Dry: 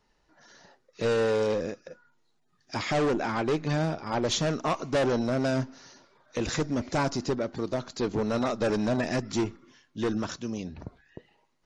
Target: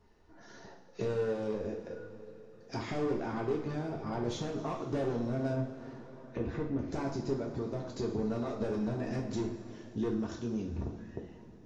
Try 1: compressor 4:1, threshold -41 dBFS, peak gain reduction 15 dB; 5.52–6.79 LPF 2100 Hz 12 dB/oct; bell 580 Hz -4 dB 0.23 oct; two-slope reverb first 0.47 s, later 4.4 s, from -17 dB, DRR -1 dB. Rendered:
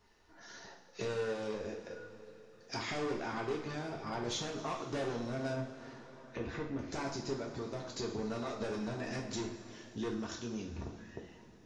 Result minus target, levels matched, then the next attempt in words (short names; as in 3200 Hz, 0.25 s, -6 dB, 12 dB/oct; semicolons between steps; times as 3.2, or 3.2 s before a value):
1000 Hz band +3.5 dB
compressor 4:1, threshold -41 dBFS, peak gain reduction 15 dB; tilt shelf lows +6.5 dB, about 940 Hz; 5.52–6.79 LPF 2100 Hz 12 dB/oct; bell 580 Hz -4 dB 0.23 oct; two-slope reverb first 0.47 s, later 4.4 s, from -17 dB, DRR -1 dB